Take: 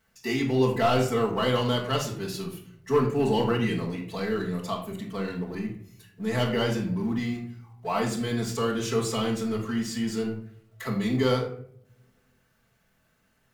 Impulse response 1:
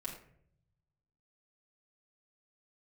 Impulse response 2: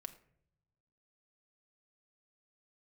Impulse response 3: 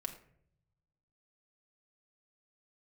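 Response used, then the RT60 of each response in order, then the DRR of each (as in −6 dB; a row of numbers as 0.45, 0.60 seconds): 1; 0.65 s, non-exponential decay, 0.65 s; −6.0, 7.0, 3.0 decibels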